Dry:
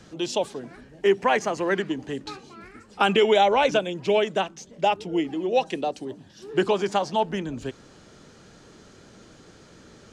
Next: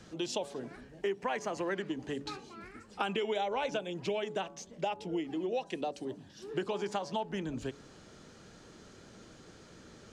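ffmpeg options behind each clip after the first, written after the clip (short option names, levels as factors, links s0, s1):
-af "bandreject=f=141.6:t=h:w=4,bandreject=f=283.2:t=h:w=4,bandreject=f=424.8:t=h:w=4,bandreject=f=566.4:t=h:w=4,bandreject=f=708:t=h:w=4,bandreject=f=849.6:t=h:w=4,bandreject=f=991.2:t=h:w=4,bandreject=f=1132.8:t=h:w=4,acompressor=threshold=0.0398:ratio=4,volume=0.631"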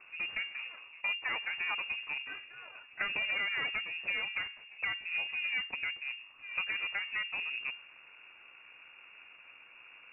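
-af "aeval=exprs='if(lt(val(0),0),0.251*val(0),val(0))':c=same,lowpass=f=2400:t=q:w=0.5098,lowpass=f=2400:t=q:w=0.6013,lowpass=f=2400:t=q:w=0.9,lowpass=f=2400:t=q:w=2.563,afreqshift=-2800,volume=1.26"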